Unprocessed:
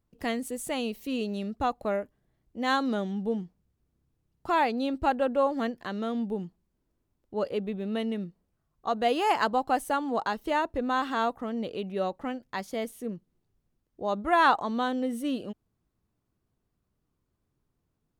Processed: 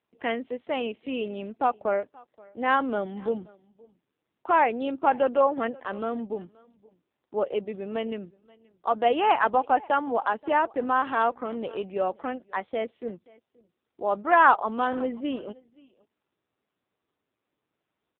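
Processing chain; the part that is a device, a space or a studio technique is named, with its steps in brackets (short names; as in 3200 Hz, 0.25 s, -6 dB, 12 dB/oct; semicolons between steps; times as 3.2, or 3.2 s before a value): 1.33–1.92 expander -59 dBFS; satellite phone (BPF 330–3200 Hz; echo 0.528 s -24 dB; gain +5 dB; AMR-NB 5.9 kbps 8000 Hz)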